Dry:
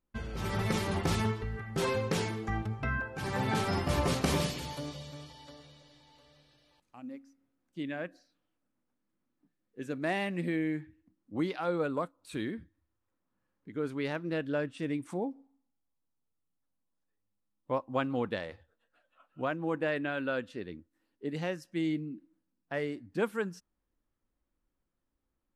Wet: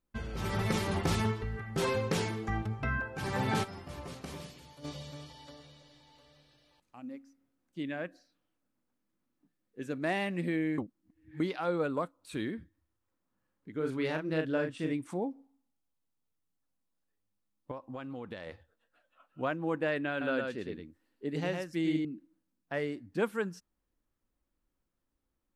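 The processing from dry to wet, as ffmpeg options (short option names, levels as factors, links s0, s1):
-filter_complex "[0:a]asettb=1/sr,asplit=3[s0][s1][s2];[s0]atrim=end=13.764[s3];[s1]atrim=start=13.76:end=14.93,asetpts=PTS-STARTPTS,afade=t=in:d=0.004:c=qsin,afade=t=out:st=1.166:d=0.004:c=qsin,asplit=2[s4][s5];[s5]adelay=38,volume=0.562[s6];[s4][s6]amix=inputs=2:normalize=0,atrim=end_sample=51597[s7];[s2]atrim=start=14.926[s8];[s3][s7]acrossfade=d=0.004:c1=hsin:c2=qsin[s9];[s9][s8]acrossfade=d=0.004:c1=qsin:c2=hsin,asettb=1/sr,asplit=3[s10][s11][s12];[s10]atrim=end=17.714[s13];[s11]atrim=start=17.71:end=18.47,asetpts=PTS-STARTPTS,afade=t=in:d=0.004:c=qsin,afade=t=out:st=0.756:d=0.004:c=qsin,acompressor=threshold=0.0126:ratio=6:attack=3.2:release=140:knee=1:detection=peak[s14];[s12]atrim=start=18.466[s15];[s13][s14]acrossfade=d=0.004:c1=hsin:c2=qsin[s16];[s16][s15]acrossfade=d=0.004:c1=qsin:c2=hsin,asettb=1/sr,asplit=3[s17][s18][s19];[s17]atrim=end=20.104[s20];[s18]atrim=start=20.1:end=22.05,asetpts=PTS-STARTPTS,afade=t=in:d=0.004:c=qsin,afade=t=out:st=1.946:d=0.004:c=qsin,aecho=1:1:109:0.631,atrim=end_sample=85995[s21];[s19]atrim=start=22.046[s22];[s20][s21]acrossfade=d=0.004:c1=hsin:c2=qsin[s23];[s23][s22]acrossfade=d=0.004:c1=qsin:c2=hsin,asplit=5[s24][s25][s26][s27][s28];[s24]atrim=end=3.75,asetpts=PTS-STARTPTS,afade=t=out:st=3.63:d=0.12:c=exp:silence=0.188365[s29];[s25]atrim=start=3.75:end=4.73,asetpts=PTS-STARTPTS,volume=0.188[s30];[s26]atrim=start=4.73:end=10.782,asetpts=PTS-STARTPTS,afade=t=in:d=0.12:c=exp:silence=0.188365[s31];[s27]atrim=start=10.778:end=11.402,asetpts=PTS-STARTPTS,areverse[s32];[s28]atrim=start=11.398[s33];[s29][s30][s31]concat=n=3:v=0:a=1[s34];[s34][s32]acrossfade=d=0.004:c1=hsin:c2=hsin[s35];[s35][s33]acrossfade=d=0.004:c1=hsin:c2=hsin"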